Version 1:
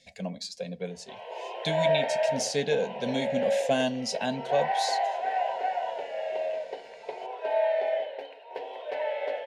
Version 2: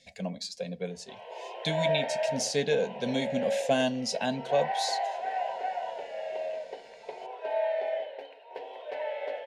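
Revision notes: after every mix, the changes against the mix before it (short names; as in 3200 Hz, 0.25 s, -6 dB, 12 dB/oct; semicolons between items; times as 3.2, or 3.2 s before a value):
background -3.5 dB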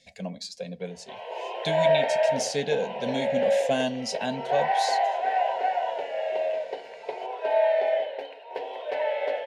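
background +7.0 dB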